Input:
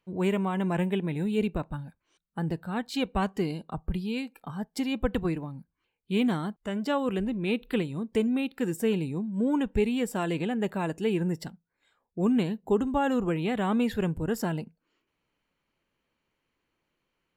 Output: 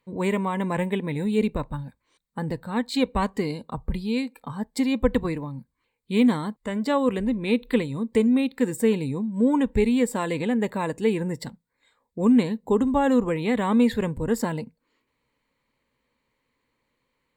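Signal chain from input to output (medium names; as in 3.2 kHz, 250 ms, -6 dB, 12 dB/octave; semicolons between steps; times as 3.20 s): rippled EQ curve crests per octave 0.99, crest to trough 8 dB; trim +3.5 dB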